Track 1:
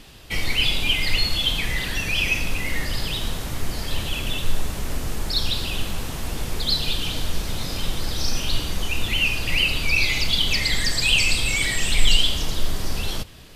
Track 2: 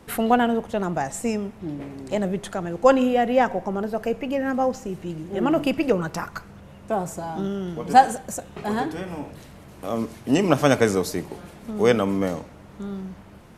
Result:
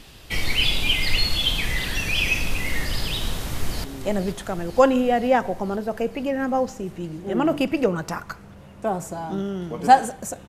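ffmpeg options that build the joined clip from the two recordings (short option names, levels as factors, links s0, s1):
-filter_complex "[0:a]apad=whole_dur=10.48,atrim=end=10.48,atrim=end=3.842[s0];[1:a]atrim=start=1.898:end=8.54[s1];[s0][s1]acrossfade=d=0.004:c1=hsin:c2=hsin,asplit=2[s2][s3];[s3]afade=t=in:st=3.31:d=0.01,afade=t=out:st=3.84:d=0.01,aecho=0:1:480|960|1440|1920|2400|2880|3360|3840|4320|4800|5280:0.354813|0.248369|0.173859|0.121701|0.0851907|0.0596335|0.0417434|0.0292204|0.0204543|0.014318|0.0100226[s4];[s2][s4]amix=inputs=2:normalize=0"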